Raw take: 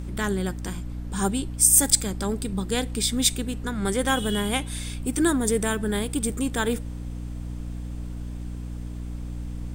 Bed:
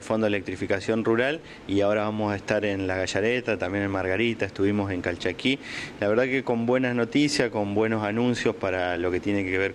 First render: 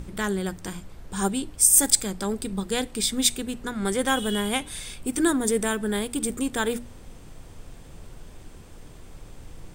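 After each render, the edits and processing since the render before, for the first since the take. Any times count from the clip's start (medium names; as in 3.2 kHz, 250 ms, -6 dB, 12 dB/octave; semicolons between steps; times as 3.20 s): hum notches 60/120/180/240/300 Hz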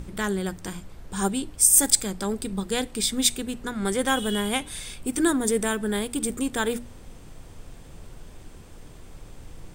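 no audible change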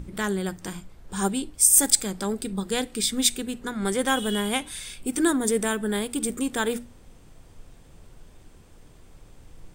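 noise print and reduce 6 dB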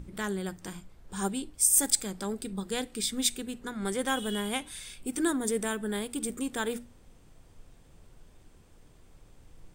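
trim -6 dB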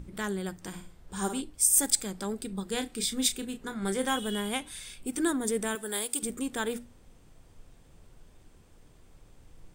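0.68–1.41 s: flutter echo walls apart 9.3 m, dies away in 0.43 s; 2.70–4.17 s: doubling 31 ms -9 dB; 5.75–6.23 s: tone controls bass -15 dB, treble +11 dB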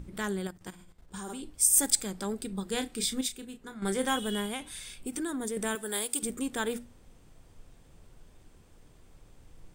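0.47–1.44 s: level held to a coarse grid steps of 13 dB; 3.21–3.82 s: gain -7 dB; 4.45–5.57 s: compression, threshold -30 dBFS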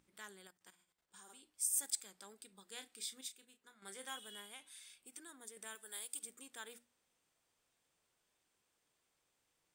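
low-pass 1.6 kHz 6 dB/octave; differentiator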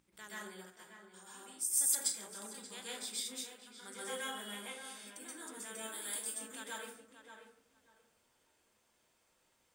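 tape echo 582 ms, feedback 21%, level -8.5 dB, low-pass 2.3 kHz; plate-style reverb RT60 0.57 s, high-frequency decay 0.5×, pre-delay 115 ms, DRR -7 dB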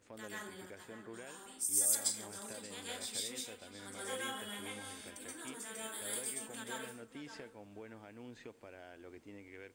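add bed -27.5 dB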